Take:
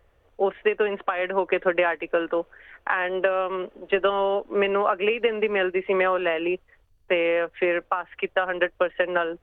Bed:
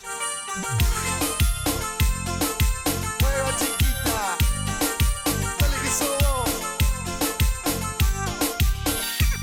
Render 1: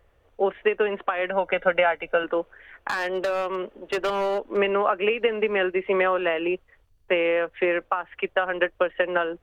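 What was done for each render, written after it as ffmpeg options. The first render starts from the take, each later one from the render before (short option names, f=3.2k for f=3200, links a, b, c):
-filter_complex "[0:a]asettb=1/sr,asplit=3[a][b][c];[a]atrim=end=1.304[d];[b]atrim=start=1.3:end=2.24,asetpts=PTS-STARTPTS,afade=t=in:d=0.004:c=qsin,afade=t=out:st=0.936:d=0.004:c=qsin,aecho=1:1:1.4:0.65,atrim=end_sample=41454[e];[c]atrim=start=2.236[f];[d][e]acrossfade=d=0.004:c1=hsin:c2=qsin[g];[g][f]acrossfade=d=0.004:c1=qsin:c2=hsin,asettb=1/sr,asplit=3[h][i][j];[h]atrim=end=2.884[k];[i]atrim=start=2.88:end=4.57,asetpts=PTS-STARTPTS,afade=t=in:d=0.004:c=qsin,afade=t=out:st=1.686:d=0.004:c=qsin,asoftclip=type=hard:threshold=-21dB[l];[j]atrim=start=4.566[m];[k][l]acrossfade=d=0.004:c1=hsin:c2=qsin[n];[n][m]acrossfade=d=0.004:c1=qsin:c2=hsin"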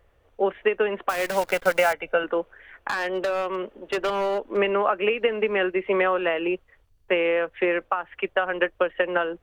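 -filter_complex "[0:a]asettb=1/sr,asplit=3[a][b][c];[a]atrim=end=1.094[d];[b]atrim=start=1.09:end=1.93,asetpts=PTS-STARTPTS,afade=t=in:d=0.004:c=qsin,afade=t=out:st=0.836:d=0.004:c=qsin,acrusher=bits=6:dc=4:mix=0:aa=0.000001[e];[c]atrim=start=1.926[f];[d][e]acrossfade=d=0.004:c1=hsin:c2=qsin[g];[g][f]acrossfade=d=0.004:c1=qsin:c2=hsin"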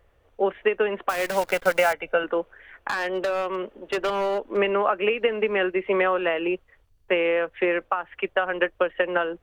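-af anull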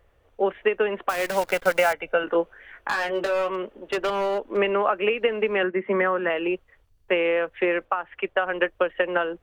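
-filter_complex "[0:a]asettb=1/sr,asplit=3[a][b][c];[a]atrim=end=2.254[d];[b]atrim=start=2.25:end=3.51,asetpts=PTS-STARTPTS,afade=t=in:d=0.004:c=qsin,afade=t=out:st=1.256:d=0.004:c=qsin,asplit=2[e][f];[f]adelay=18,volume=-4dB[g];[e][g]amix=inputs=2:normalize=0,atrim=end_sample=55566[h];[c]atrim=start=3.506[i];[d][h]acrossfade=d=0.004:c1=hsin:c2=qsin[j];[j][i]acrossfade=d=0.004:c1=qsin:c2=hsin,asettb=1/sr,asplit=3[k][l][m];[k]atrim=end=5.634[n];[l]atrim=start=5.63:end=6.3,asetpts=PTS-STARTPTS,afade=t=in:d=0.004:c=qsin,afade=t=out:st=0.666:d=0.004:c=qsin,highpass=f=120:w=0.5412,highpass=f=120:w=1.3066,equalizer=f=130:t=q:w=4:g=9,equalizer=f=220:t=q:w=4:g=9,equalizer=f=450:t=q:w=4:g=-3,equalizer=f=720:t=q:w=4:g=-4,equalizer=f=1.8k:t=q:w=4:g=4,equalizer=f=2.6k:t=q:w=4:g=-10,lowpass=f=2.8k:w=0.5412,lowpass=f=2.8k:w=1.3066[o];[m]atrim=start=6.296[p];[n][o]acrossfade=d=0.004:c1=hsin:c2=qsin[q];[q][p]acrossfade=d=0.004:c1=qsin:c2=hsin,asettb=1/sr,asplit=3[r][s][t];[r]atrim=end=7.854[u];[s]atrim=start=7.85:end=8.47,asetpts=PTS-STARTPTS,afade=t=in:d=0.004:c=qsin,afade=t=out:st=0.616:d=0.004:c=qsin,bass=f=250:g=-2,treble=f=4k:g=-5[v];[t]atrim=start=8.466[w];[u][v]acrossfade=d=0.004:c1=hsin:c2=qsin[x];[x][w]acrossfade=d=0.004:c1=qsin:c2=hsin"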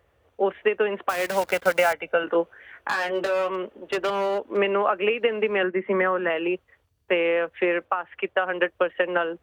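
-af "highpass=f=63:w=0.5412,highpass=f=63:w=1.3066"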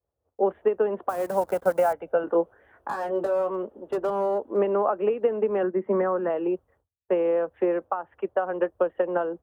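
-af "agate=range=-33dB:threshold=-52dB:ratio=3:detection=peak,firequalizer=gain_entry='entry(820,0);entry(2200,-21);entry(9200,-7)':delay=0.05:min_phase=1"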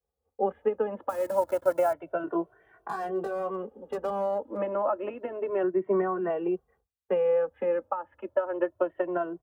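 -filter_complex "[0:a]asplit=2[a][b];[b]adelay=2.1,afreqshift=0.29[c];[a][c]amix=inputs=2:normalize=1"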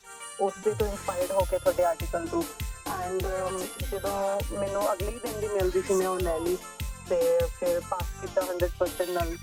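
-filter_complex "[1:a]volume=-13.5dB[a];[0:a][a]amix=inputs=2:normalize=0"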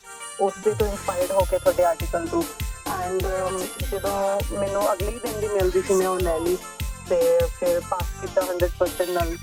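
-af "volume=5dB"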